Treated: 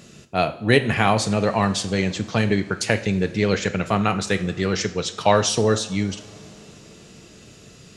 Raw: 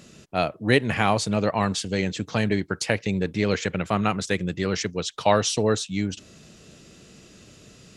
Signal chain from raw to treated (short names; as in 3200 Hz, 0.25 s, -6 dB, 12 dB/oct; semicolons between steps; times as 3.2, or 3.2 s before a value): two-slope reverb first 0.49 s, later 4.3 s, from -19 dB, DRR 9 dB; gain +2.5 dB